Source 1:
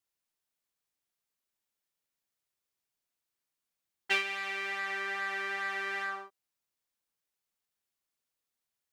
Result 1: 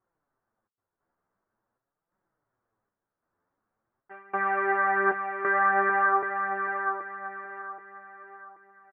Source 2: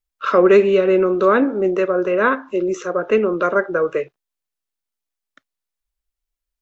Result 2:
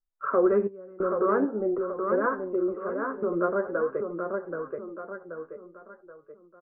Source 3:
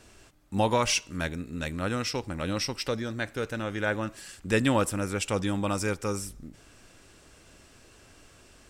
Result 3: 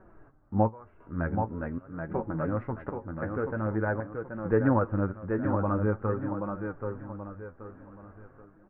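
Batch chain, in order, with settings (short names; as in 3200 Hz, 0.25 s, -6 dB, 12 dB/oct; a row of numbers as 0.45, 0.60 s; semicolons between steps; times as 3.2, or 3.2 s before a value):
step gate "xxxxxx...x" 135 bpm -24 dB; resonator 110 Hz, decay 0.17 s, harmonics all, mix 40%; on a send: feedback echo 0.779 s, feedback 36%, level -6 dB; on the sum: flange 0.46 Hz, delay 5.2 ms, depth 7.4 ms, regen +35%; steep low-pass 1500 Hz 36 dB/oct; in parallel at 0 dB: compressor, threshold -32 dBFS; on the sum: normalise peaks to -12 dBFS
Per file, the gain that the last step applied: +17.0, -4.5, +2.0 dB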